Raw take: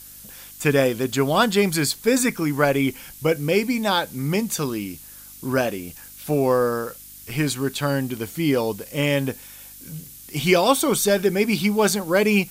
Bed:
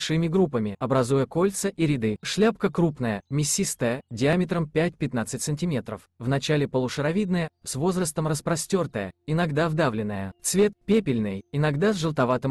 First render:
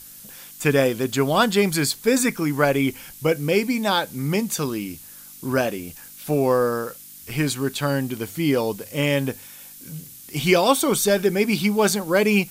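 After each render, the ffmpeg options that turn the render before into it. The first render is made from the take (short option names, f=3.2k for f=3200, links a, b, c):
-af "bandreject=f=50:t=h:w=4,bandreject=f=100:t=h:w=4"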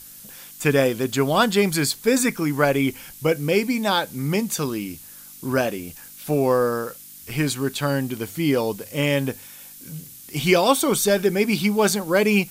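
-af anull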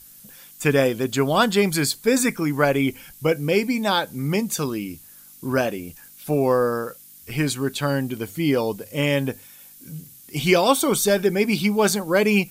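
-af "afftdn=nr=6:nf=-43"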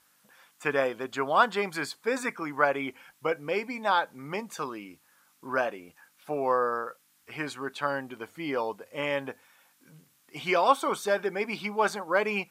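-af "bandpass=f=1.1k:t=q:w=1.3:csg=0,crystalizer=i=0.5:c=0"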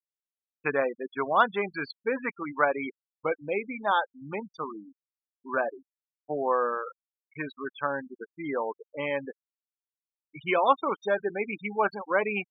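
-af "afftfilt=real='re*gte(hypot(re,im),0.0447)':imag='im*gte(hypot(re,im),0.0447)':win_size=1024:overlap=0.75"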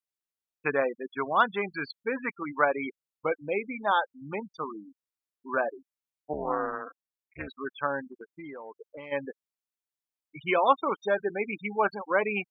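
-filter_complex "[0:a]asettb=1/sr,asplit=3[a][b][c];[a]atrim=end=0.964[d];[b]atrim=start=0.96:end=2.42,asetpts=PTS-STARTPTS,afade=t=in:d=0.004:c=qsin,afade=t=out:st=1.456:d=0.004:c=qsin,equalizer=f=580:w=1.5:g=-4[e];[c]atrim=start=2.416[f];[d][e]acrossfade=d=0.004:c1=hsin:c2=qsin[g];[g][f]acrossfade=d=0.004:c1=qsin:c2=hsin,asettb=1/sr,asplit=3[h][i][j];[h]atrim=end=6.334[k];[i]atrim=start=6.33:end=7.48,asetpts=PTS-STARTPTS,afade=t=in:d=0.004:c=qsin,afade=t=out:st=1.146:d=0.004:c=qsin,tremolo=f=220:d=0.947[l];[j]atrim=start=7.476[m];[k][l]acrossfade=d=0.004:c1=hsin:c2=qsin[n];[n][m]acrossfade=d=0.004:c1=qsin:c2=hsin,asplit=3[o][p][q];[o]afade=t=out:st=8.04:d=0.02[r];[p]acompressor=threshold=-39dB:ratio=6:attack=3.2:release=140:knee=1:detection=peak,afade=t=in:st=8.04:d=0.02,afade=t=out:st=9.11:d=0.02[s];[q]afade=t=in:st=9.11:d=0.02[t];[r][s][t]amix=inputs=3:normalize=0"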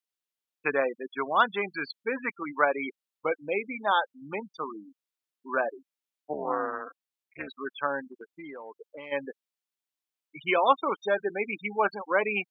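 -af "highpass=190,equalizer=f=3.2k:w=1.3:g=3.5"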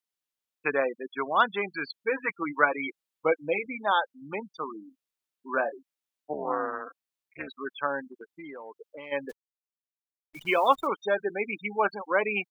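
-filter_complex "[0:a]asettb=1/sr,asplit=3[a][b][c];[a]atrim=end=2.014[d];[b]atrim=start=2.01:end=3.66,asetpts=PTS-STARTPTS,afade=t=in:d=0.004:c=qsin,afade=t=out:st=1.646:d=0.004:c=qsin,aecho=1:1:6.2:0.71,atrim=end_sample=72765[e];[c]atrim=start=3.656[f];[d][e]acrossfade=d=0.004:c1=hsin:c2=qsin[g];[g][f]acrossfade=d=0.004:c1=qsin:c2=hsin,asplit=3[h][i][j];[h]afade=t=out:st=4.8:d=0.02[k];[i]asplit=2[l][m];[m]adelay=27,volume=-11.5dB[n];[l][n]amix=inputs=2:normalize=0,afade=t=in:st=4.8:d=0.02,afade=t=out:st=5.72:d=0.02[o];[j]afade=t=in:st=5.72:d=0.02[p];[k][o][p]amix=inputs=3:normalize=0,asettb=1/sr,asplit=3[q][r][s];[q]atrim=end=9.294[t];[r]atrim=start=9.29:end=10.87,asetpts=PTS-STARTPTS,afade=t=in:d=0.004:c=qsin,afade=t=out:st=1.576:d=0.004:c=qsin,acrusher=bits=9:dc=4:mix=0:aa=0.000001[u];[s]atrim=start=10.866[v];[t][u]acrossfade=d=0.004:c1=hsin:c2=qsin[w];[w][v]acrossfade=d=0.004:c1=qsin:c2=hsin"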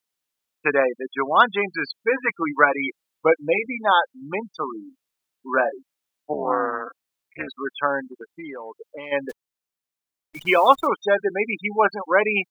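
-af "volume=7dB,alimiter=limit=-1dB:level=0:latency=1"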